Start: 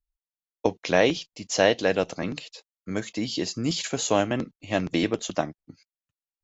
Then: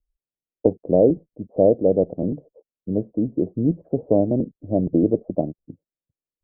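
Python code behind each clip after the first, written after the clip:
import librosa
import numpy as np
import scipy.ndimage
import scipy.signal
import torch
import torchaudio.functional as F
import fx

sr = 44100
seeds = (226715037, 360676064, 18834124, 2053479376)

y = scipy.signal.sosfilt(scipy.signal.butter(6, 600.0, 'lowpass', fs=sr, output='sos'), x)
y = y * 10.0 ** (7.0 / 20.0)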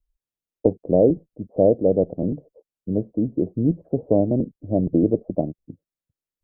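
y = fx.low_shelf(x, sr, hz=130.0, db=4.5)
y = y * 10.0 ** (-1.0 / 20.0)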